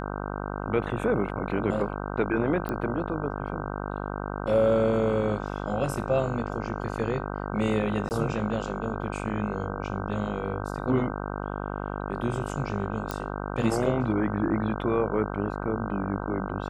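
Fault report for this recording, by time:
mains buzz 50 Hz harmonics 31 −33 dBFS
0:02.69: click −18 dBFS
0:08.09–0:08.11: drop-out 19 ms
0:13.11: click −15 dBFS

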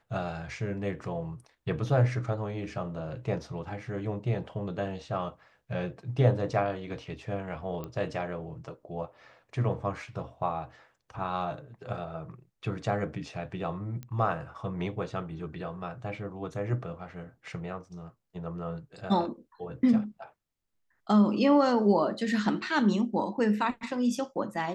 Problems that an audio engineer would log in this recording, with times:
0:07.84: click −24 dBFS
0:14.03: click −27 dBFS

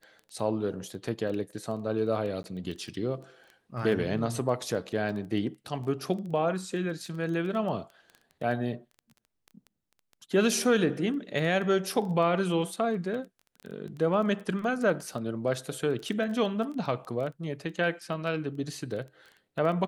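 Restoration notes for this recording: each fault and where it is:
surface crackle 10 per second −36 dBFS
0:02.43–0:02.44: drop-out 11 ms

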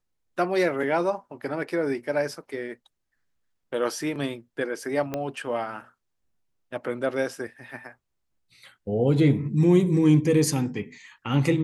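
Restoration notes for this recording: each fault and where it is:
0:05.14: click −15 dBFS

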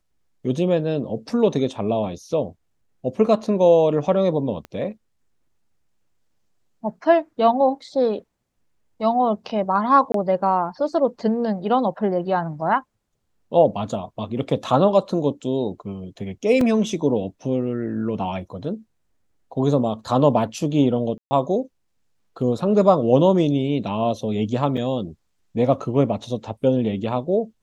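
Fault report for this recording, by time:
0:04.65: click −22 dBFS
0:10.12–0:10.14: drop-out 23 ms
0:16.61: drop-out 3.4 ms
0:21.18–0:21.31: drop-out 130 ms
0:24.77–0:24.78: drop-out 5.5 ms

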